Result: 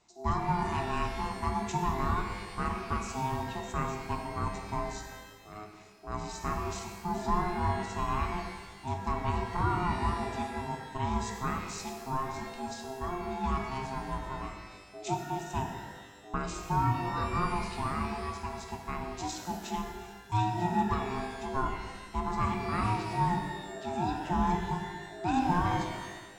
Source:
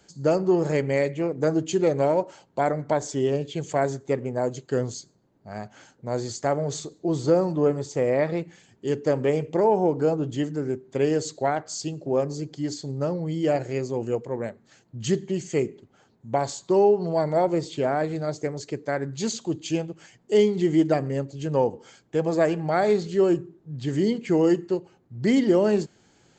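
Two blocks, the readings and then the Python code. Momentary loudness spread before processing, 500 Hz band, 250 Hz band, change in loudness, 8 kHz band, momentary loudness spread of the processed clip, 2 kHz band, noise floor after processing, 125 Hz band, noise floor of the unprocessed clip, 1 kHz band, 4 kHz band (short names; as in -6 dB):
11 LU, -17.0 dB, -10.0 dB, -8.5 dB, -7.5 dB, 10 LU, -2.5 dB, -50 dBFS, -4.5 dB, -62 dBFS, +0.5 dB, -5.0 dB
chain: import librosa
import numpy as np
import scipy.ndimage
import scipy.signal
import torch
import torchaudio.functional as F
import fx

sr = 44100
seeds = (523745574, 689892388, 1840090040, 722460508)

y = x * np.sin(2.0 * np.pi * 530.0 * np.arange(len(x)) / sr)
y = fx.rev_shimmer(y, sr, seeds[0], rt60_s=1.4, semitones=12, shimmer_db=-8, drr_db=3.5)
y = y * librosa.db_to_amplitude(-7.0)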